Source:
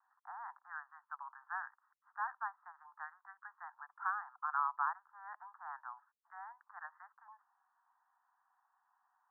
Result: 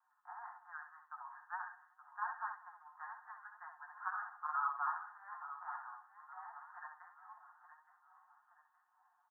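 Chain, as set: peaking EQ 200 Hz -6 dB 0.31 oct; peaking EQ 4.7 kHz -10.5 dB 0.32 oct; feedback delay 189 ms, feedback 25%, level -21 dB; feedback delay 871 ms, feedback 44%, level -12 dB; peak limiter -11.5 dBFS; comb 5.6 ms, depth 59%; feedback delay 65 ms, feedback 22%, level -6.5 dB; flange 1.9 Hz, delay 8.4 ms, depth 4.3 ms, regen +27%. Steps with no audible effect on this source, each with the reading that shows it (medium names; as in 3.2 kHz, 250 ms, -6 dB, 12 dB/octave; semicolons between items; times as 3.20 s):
peaking EQ 200 Hz: input has nothing below 640 Hz; peaking EQ 4.7 kHz: input has nothing above 1.9 kHz; peak limiter -11.5 dBFS: peak at its input -23.0 dBFS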